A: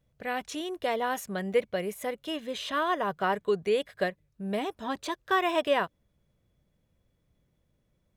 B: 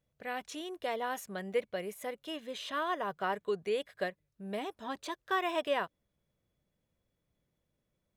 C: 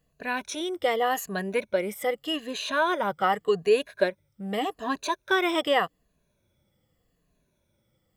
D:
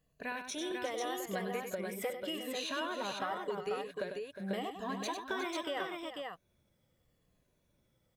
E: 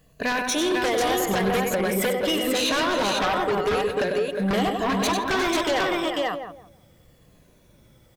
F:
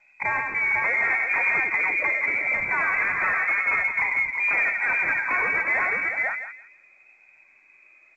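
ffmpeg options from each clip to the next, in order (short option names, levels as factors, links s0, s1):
-af "lowshelf=f=170:g=-7,volume=0.531"
-af "afftfilt=real='re*pow(10,12/40*sin(2*PI*(1.5*log(max(b,1)*sr/1024/100)/log(2)-(-0.84)*(pts-256)/sr)))':imag='im*pow(10,12/40*sin(2*PI*(1.5*log(max(b,1)*sr/1024/100)/log(2)-(-0.84)*(pts-256)/sr)))':win_size=1024:overlap=0.75,volume=2.51"
-filter_complex "[0:a]acompressor=threshold=0.0282:ratio=6,asplit=2[s0][s1];[s1]aecho=0:1:98|359|493:0.422|0.266|0.631[s2];[s0][s2]amix=inputs=2:normalize=0,volume=0.562"
-filter_complex "[0:a]aeval=exprs='0.0668*sin(PI/2*3.16*val(0)/0.0668)':c=same,asplit=2[s0][s1];[s1]adelay=165,lowpass=f=880:p=1,volume=0.501,asplit=2[s2][s3];[s3]adelay=165,lowpass=f=880:p=1,volume=0.29,asplit=2[s4][s5];[s5]adelay=165,lowpass=f=880:p=1,volume=0.29,asplit=2[s6][s7];[s7]adelay=165,lowpass=f=880:p=1,volume=0.29[s8];[s0][s2][s4][s6][s8]amix=inputs=5:normalize=0,volume=1.58"
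-af "lowpass=f=2200:t=q:w=0.5098,lowpass=f=2200:t=q:w=0.6013,lowpass=f=2200:t=q:w=0.9,lowpass=f=2200:t=q:w=2.563,afreqshift=-2600" -ar 16000 -c:a pcm_mulaw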